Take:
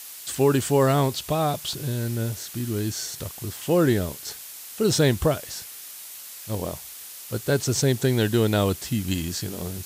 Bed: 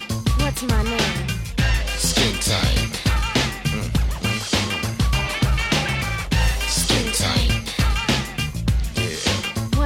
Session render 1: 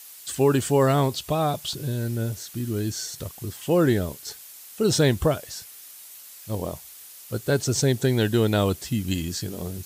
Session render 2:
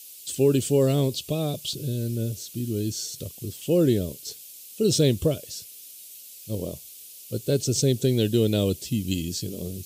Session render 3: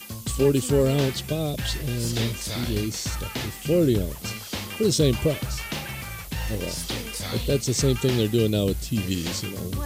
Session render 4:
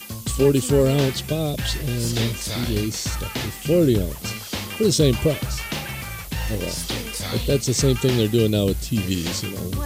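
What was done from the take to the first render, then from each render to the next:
denoiser 6 dB, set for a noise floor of -41 dBFS
HPF 81 Hz; band shelf 1200 Hz -16 dB
add bed -11.5 dB
gain +3 dB

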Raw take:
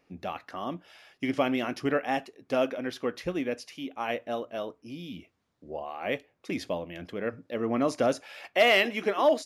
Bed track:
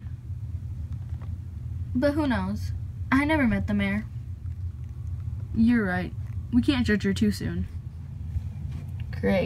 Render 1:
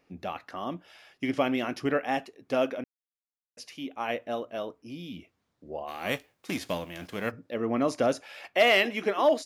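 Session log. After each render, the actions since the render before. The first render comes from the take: 2.84–3.57 mute; 5.87–7.3 spectral whitening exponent 0.6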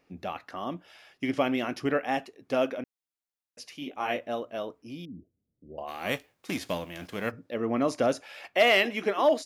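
3.8–4.27 doubler 20 ms -3 dB; 5.05–5.78 Gaussian blur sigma 20 samples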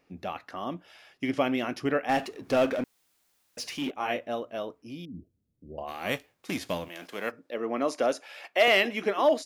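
2.09–3.91 power-law curve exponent 0.7; 5.14–5.93 low shelf 180 Hz +7 dB; 6.88–8.68 HPF 310 Hz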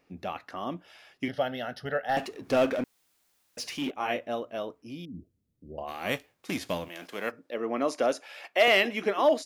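1.28–2.17 fixed phaser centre 1600 Hz, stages 8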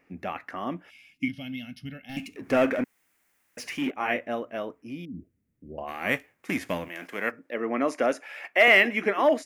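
0.9–2.36 spectral gain 310–2100 Hz -22 dB; ten-band EQ 250 Hz +4 dB, 2000 Hz +10 dB, 4000 Hz -9 dB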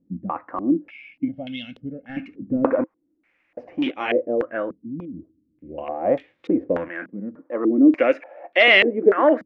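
small resonant body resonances 320/520 Hz, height 11 dB, ringing for 60 ms; stepped low-pass 3.4 Hz 200–3600 Hz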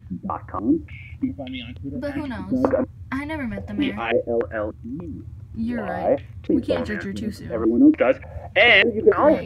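add bed track -5.5 dB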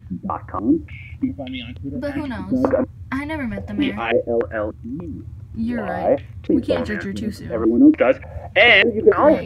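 gain +2.5 dB; limiter -1 dBFS, peak gain reduction 1.5 dB

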